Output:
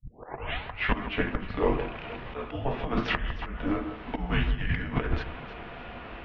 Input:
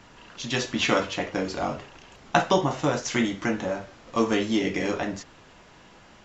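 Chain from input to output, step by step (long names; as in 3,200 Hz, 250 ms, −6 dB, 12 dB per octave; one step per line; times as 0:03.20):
turntable start at the beginning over 0.95 s
mains-hum notches 50/100/150/200 Hz
volume swells 731 ms
compressor whose output falls as the input rises −33 dBFS, ratio −0.5
delay that swaps between a low-pass and a high-pass 154 ms, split 1,900 Hz, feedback 59%, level −10 dB
convolution reverb RT60 0.15 s, pre-delay 4 ms, DRR 10.5 dB
single-sideband voice off tune −270 Hz 160–3,500 Hz
level +8 dB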